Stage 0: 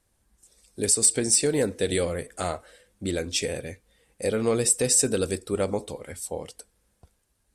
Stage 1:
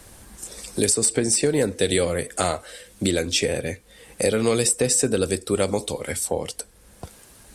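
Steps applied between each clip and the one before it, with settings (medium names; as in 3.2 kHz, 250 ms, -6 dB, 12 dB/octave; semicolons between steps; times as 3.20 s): three bands compressed up and down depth 70%; trim +4 dB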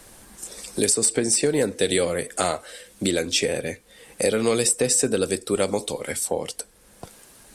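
peaking EQ 67 Hz -10.5 dB 1.5 oct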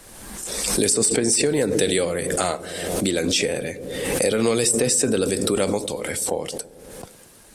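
feedback echo behind a low-pass 113 ms, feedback 76%, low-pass 490 Hz, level -15 dB; swell ahead of each attack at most 35 dB/s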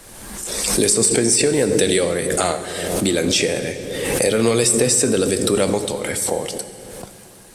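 reverberation RT60 2.7 s, pre-delay 4 ms, DRR 10 dB; trim +3 dB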